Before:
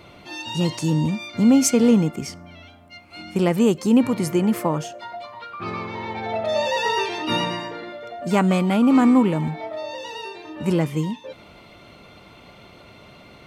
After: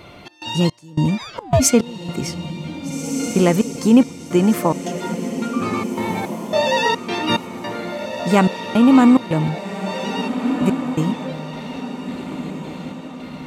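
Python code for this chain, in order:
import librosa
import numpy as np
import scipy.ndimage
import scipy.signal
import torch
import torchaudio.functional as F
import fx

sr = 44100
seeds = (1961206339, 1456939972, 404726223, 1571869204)

y = fx.step_gate(x, sr, bpm=108, pattern='xx.xx..x', floor_db=-24.0, edge_ms=4.5)
y = fx.echo_diffused(y, sr, ms=1643, feedback_pct=43, wet_db=-8.5)
y = fx.ring_mod(y, sr, carrier_hz=fx.line((1.17, 1600.0), (1.59, 350.0)), at=(1.17, 1.59), fade=0.02)
y = y * 10.0 ** (4.5 / 20.0)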